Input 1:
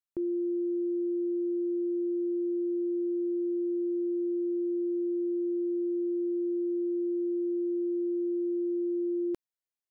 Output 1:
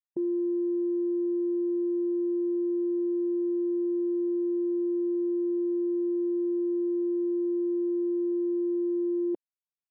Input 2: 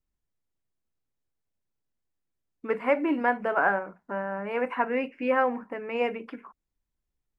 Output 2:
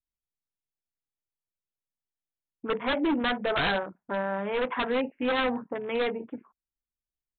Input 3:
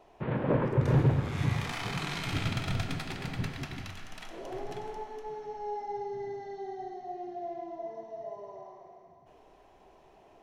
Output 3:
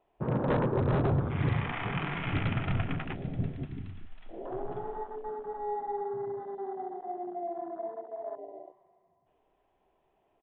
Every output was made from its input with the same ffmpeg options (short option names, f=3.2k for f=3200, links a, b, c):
-af "afwtdn=0.0112,acontrast=33,aresample=8000,aeval=exprs='0.133*(abs(mod(val(0)/0.133+3,4)-2)-1)':c=same,aresample=44100,volume=-3dB"